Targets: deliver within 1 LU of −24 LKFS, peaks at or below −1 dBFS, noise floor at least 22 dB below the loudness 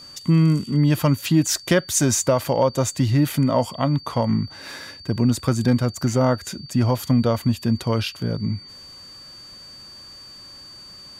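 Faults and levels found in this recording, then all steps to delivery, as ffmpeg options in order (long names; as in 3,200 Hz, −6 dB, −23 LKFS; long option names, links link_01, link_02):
interfering tone 4,600 Hz; level of the tone −40 dBFS; integrated loudness −21.0 LKFS; sample peak −6.5 dBFS; target loudness −24.0 LKFS
→ -af "bandreject=frequency=4600:width=30"
-af "volume=-3dB"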